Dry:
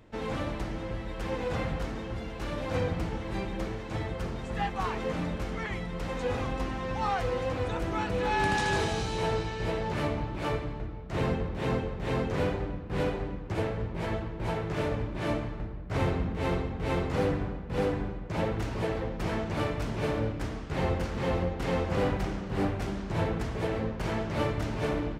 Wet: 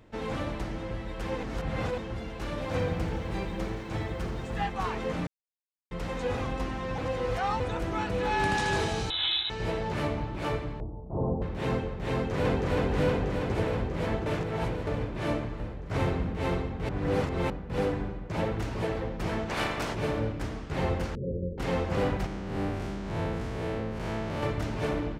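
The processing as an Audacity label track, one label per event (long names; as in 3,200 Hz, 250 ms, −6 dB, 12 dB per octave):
1.430000	1.980000	reverse
2.520000	4.640000	feedback echo at a low word length 85 ms, feedback 80%, word length 10 bits, level −14 dB
5.270000	5.910000	silence
6.980000	7.600000	reverse
9.100000	9.500000	voice inversion scrambler carrier 3,900 Hz
10.800000	11.420000	Butterworth low-pass 980 Hz 48 dB per octave
12.120000	12.690000	delay throw 320 ms, feedback 80%, level 0 dB
14.260000	14.870000	reverse
16.890000	17.500000	reverse
19.480000	19.930000	ceiling on every frequency bin ceiling under each frame's peak by 17 dB
21.150000	21.580000	Chebyshev low-pass with heavy ripple 580 Hz, ripple 6 dB
22.260000	24.430000	spectrum smeared in time width 141 ms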